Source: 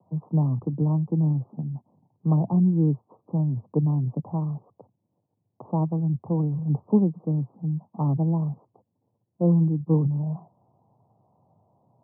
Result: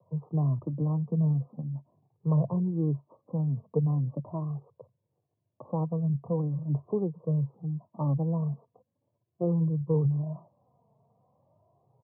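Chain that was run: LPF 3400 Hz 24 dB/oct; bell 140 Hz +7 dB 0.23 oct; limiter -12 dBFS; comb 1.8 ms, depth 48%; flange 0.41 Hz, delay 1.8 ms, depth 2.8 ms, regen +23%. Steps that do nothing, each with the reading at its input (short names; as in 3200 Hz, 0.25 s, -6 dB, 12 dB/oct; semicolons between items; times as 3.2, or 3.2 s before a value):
LPF 3400 Hz: input band ends at 960 Hz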